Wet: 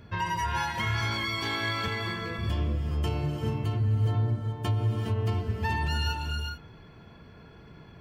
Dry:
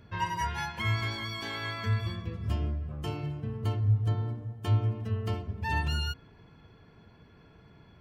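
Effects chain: 1.88–2.39 s: high-pass 210 Hz 12 dB/octave; peak limiter -25.5 dBFS, peak gain reduction 9 dB; gated-style reverb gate 460 ms rising, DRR 3 dB; trim +4.5 dB

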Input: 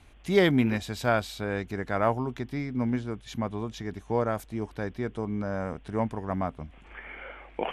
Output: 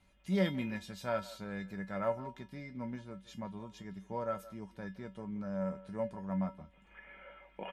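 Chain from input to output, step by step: feedback comb 190 Hz, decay 0.18 s, harmonics odd, mix 90%; speakerphone echo 170 ms, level -17 dB; trim +1 dB

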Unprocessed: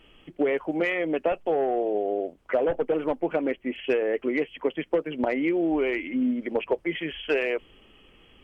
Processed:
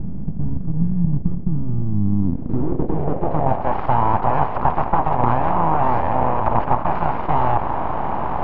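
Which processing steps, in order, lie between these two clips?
spectral levelling over time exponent 0.2; full-wave rectifier; low-pass sweep 180 Hz -> 920 Hz, 1.95–3.78 s

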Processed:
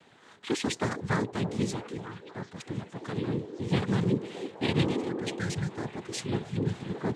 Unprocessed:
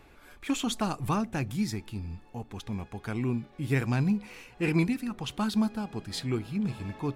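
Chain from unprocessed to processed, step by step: noise-vocoded speech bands 6; spectral replace 4.85–5.69 s, 210–1300 Hz both; repeats whose band climbs or falls 313 ms, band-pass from 410 Hz, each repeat 0.7 oct, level -6 dB

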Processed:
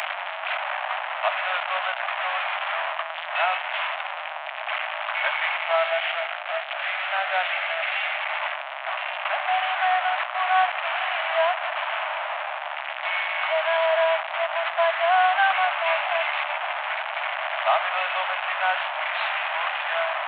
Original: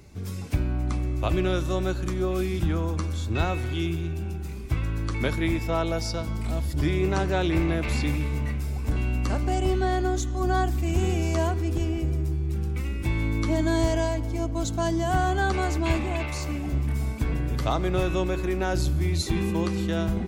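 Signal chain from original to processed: one-bit delta coder 16 kbps, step -22 dBFS; steep high-pass 610 Hz 96 dB/octave; 5.75–8.20 s: dynamic bell 1 kHz, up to -8 dB, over -47 dBFS, Q 3.6; trim +7 dB

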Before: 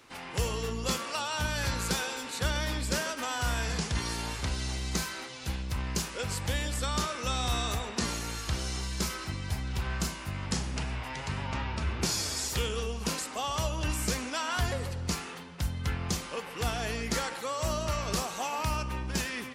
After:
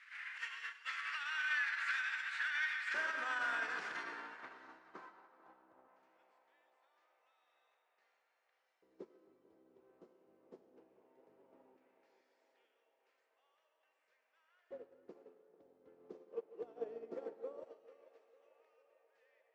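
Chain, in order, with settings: one-bit delta coder 64 kbps, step -39 dBFS; LFO high-pass square 0.17 Hz 320–1900 Hz; pre-emphasis filter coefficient 0.97; low-pass sweep 1.6 kHz -> 460 Hz, 4.40–6.46 s; 4.03–6.03 s: treble shelf 2.5 kHz -11.5 dB; reverberation RT60 1.7 s, pre-delay 40 ms, DRR 6 dB; peak limiter -38 dBFS, peak gain reduction 9 dB; band-passed feedback delay 445 ms, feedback 76%, band-pass 720 Hz, level -6.5 dB; upward expansion 2.5:1, over -57 dBFS; trim +10 dB

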